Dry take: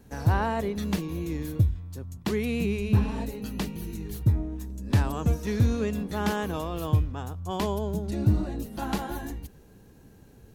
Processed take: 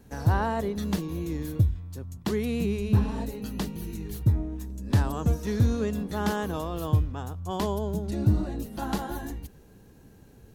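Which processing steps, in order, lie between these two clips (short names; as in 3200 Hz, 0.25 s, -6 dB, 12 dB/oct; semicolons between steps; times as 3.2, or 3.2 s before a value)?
dynamic EQ 2400 Hz, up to -6 dB, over -54 dBFS, Q 2.8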